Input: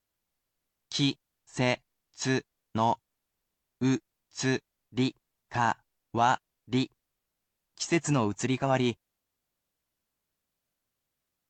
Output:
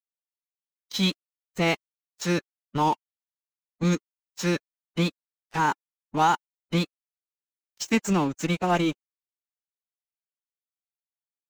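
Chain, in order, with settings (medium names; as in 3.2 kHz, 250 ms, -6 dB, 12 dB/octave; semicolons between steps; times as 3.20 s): crossover distortion -39 dBFS; formant-preserving pitch shift +5 st; trim +4.5 dB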